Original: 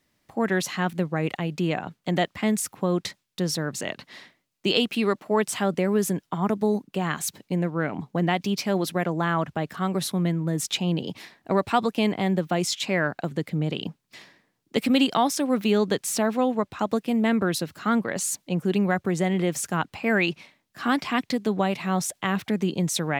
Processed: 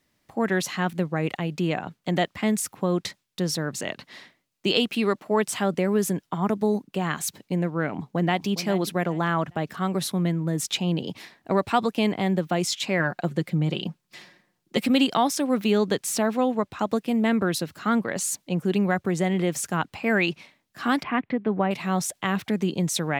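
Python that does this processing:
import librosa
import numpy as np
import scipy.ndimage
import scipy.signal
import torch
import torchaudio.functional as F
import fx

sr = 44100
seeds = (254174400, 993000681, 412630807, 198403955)

y = fx.echo_throw(x, sr, start_s=7.86, length_s=0.62, ms=410, feedback_pct=30, wet_db=-13.5)
y = fx.comb(y, sr, ms=5.6, depth=0.51, at=(12.99, 14.86))
y = fx.lowpass(y, sr, hz=2400.0, slope=24, at=(21.03, 21.71))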